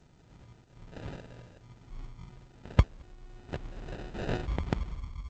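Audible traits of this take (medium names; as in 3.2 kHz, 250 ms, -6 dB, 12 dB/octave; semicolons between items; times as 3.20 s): aliases and images of a low sample rate 1.1 kHz, jitter 0%; G.722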